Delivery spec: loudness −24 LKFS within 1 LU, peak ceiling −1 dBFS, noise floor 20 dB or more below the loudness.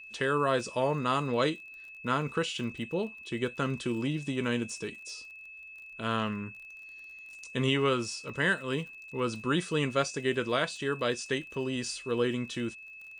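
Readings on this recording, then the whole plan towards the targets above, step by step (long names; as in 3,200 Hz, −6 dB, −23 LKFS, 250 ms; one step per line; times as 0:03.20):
crackle rate 38 per second; interfering tone 2,600 Hz; level of the tone −45 dBFS; integrated loudness −31.0 LKFS; sample peak −15.5 dBFS; target loudness −24.0 LKFS
→ click removal
notch filter 2,600 Hz, Q 30
level +7 dB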